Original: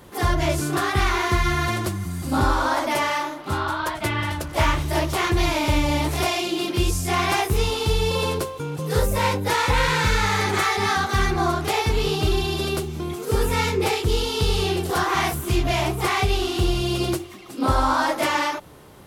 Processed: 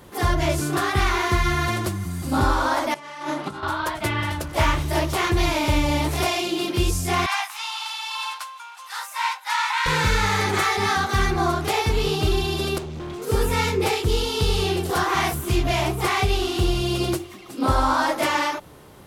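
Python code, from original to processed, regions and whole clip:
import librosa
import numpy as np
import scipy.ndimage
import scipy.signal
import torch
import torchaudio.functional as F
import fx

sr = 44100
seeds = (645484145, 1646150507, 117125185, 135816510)

y = fx.chain(x, sr, fx.lowpass(hz=11000.0, slope=24),
    fx.low_shelf_res(hz=120.0, db=-7.0, q=3.0),
    fx.over_compress(threshold_db=-30.0, ratio=-0.5), at=(2.94, 3.63))
y = fx.chain(y, sr, fx.steep_highpass(hz=840.0, slope=48),
    fx.high_shelf(hz=9300.0, db=-11.5), at=(7.26, 9.86))
y = fx.chain(y, sr, fx.lowpass(hz=5800.0, slope=12),
    fx.clip_hard(threshold_db=-30.0), at=(12.78, 13.22))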